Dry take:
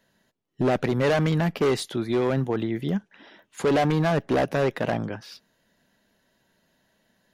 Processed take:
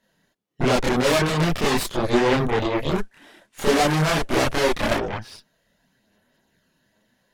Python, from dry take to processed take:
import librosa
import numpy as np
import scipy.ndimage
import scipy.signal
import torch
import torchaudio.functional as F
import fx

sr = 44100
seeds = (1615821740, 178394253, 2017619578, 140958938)

y = fx.cvsd(x, sr, bps=64000, at=(2.95, 4.96))
y = fx.cheby_harmonics(y, sr, harmonics=(6,), levels_db=(-6,), full_scale_db=-14.5)
y = fx.chorus_voices(y, sr, voices=4, hz=0.59, base_ms=29, depth_ms=4.9, mix_pct=60)
y = F.gain(torch.from_numpy(y), 3.5).numpy()